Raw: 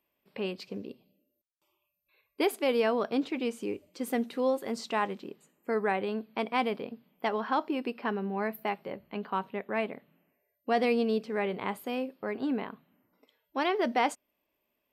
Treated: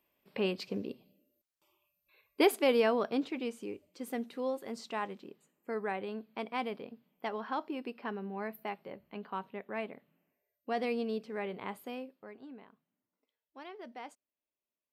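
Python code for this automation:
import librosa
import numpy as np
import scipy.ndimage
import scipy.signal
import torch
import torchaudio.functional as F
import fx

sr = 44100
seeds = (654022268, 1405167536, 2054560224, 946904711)

y = fx.gain(x, sr, db=fx.line((2.47, 2.0), (3.71, -7.0), (11.88, -7.0), (12.48, -19.0)))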